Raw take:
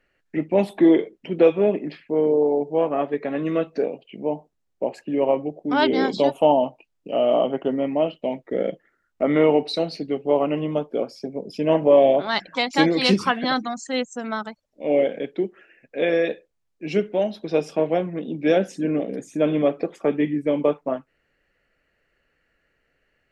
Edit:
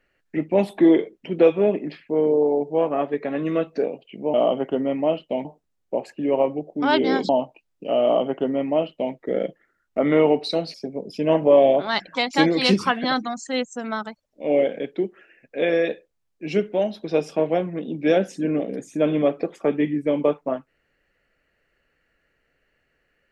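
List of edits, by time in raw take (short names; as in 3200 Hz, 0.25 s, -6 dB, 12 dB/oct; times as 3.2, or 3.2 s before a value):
6.18–6.53 cut
7.27–8.38 copy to 4.34
9.98–11.14 cut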